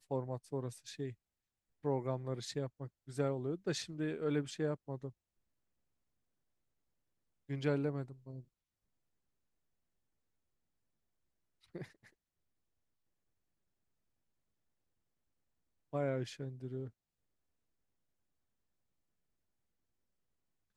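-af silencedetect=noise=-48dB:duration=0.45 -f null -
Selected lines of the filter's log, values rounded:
silence_start: 1.12
silence_end: 1.84 | silence_duration: 0.72
silence_start: 5.10
silence_end: 7.50 | silence_duration: 2.40
silence_start: 8.41
silence_end: 11.75 | silence_duration: 3.34
silence_start: 11.85
silence_end: 15.93 | silence_duration: 4.08
silence_start: 16.89
silence_end: 20.76 | silence_duration: 3.88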